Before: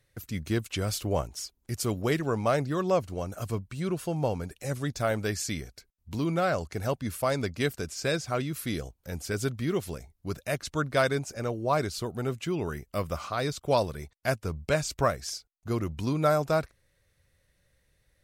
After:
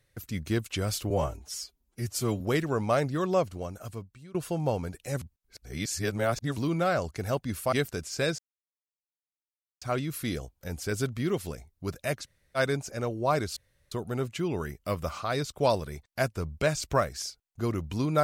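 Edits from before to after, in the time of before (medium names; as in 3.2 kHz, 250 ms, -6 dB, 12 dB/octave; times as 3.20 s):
1.10–1.97 s: stretch 1.5×
2.92–3.91 s: fade out, to -23 dB
4.78–6.13 s: reverse
7.29–7.58 s: delete
8.24 s: insert silence 1.43 s
10.66–11.00 s: room tone, crossfade 0.06 s
11.99 s: insert room tone 0.35 s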